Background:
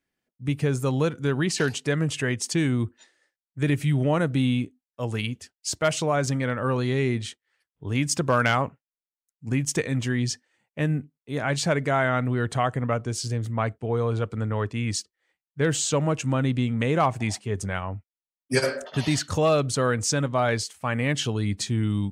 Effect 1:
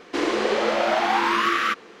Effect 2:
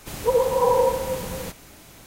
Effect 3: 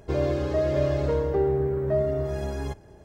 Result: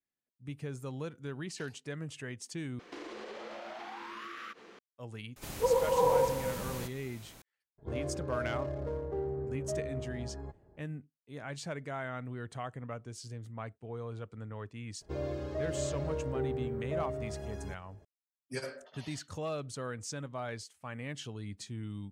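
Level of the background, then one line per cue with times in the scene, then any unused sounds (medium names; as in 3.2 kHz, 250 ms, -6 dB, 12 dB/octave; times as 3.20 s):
background -16 dB
2.79 s: replace with 1 -8 dB + compression 8:1, threshold -33 dBFS
5.36 s: add 2 -7.5 dB
7.78 s: add 3 -12 dB + local Wiener filter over 15 samples
15.01 s: add 3 -11.5 dB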